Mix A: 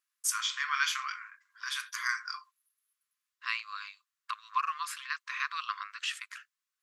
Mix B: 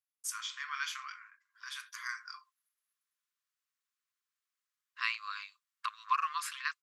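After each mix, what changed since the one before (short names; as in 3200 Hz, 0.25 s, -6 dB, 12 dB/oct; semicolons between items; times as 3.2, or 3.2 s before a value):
first voice -8.0 dB; second voice: entry +1.55 s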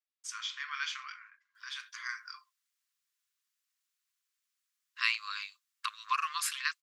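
first voice: add air absorption 140 m; master: add tilt shelf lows -8.5 dB, about 1300 Hz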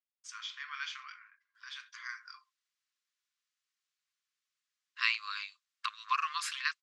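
first voice -3.5 dB; master: add LPF 6100 Hz 12 dB/oct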